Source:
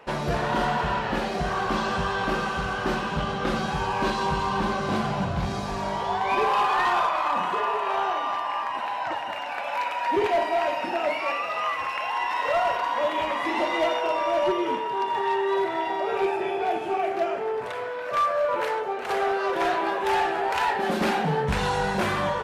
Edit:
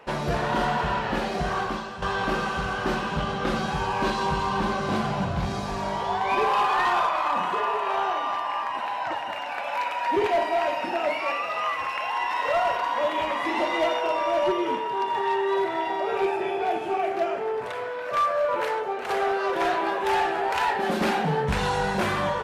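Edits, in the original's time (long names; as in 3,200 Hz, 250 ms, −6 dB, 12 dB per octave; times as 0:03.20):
0:01.60–0:02.02: fade out quadratic, to −11.5 dB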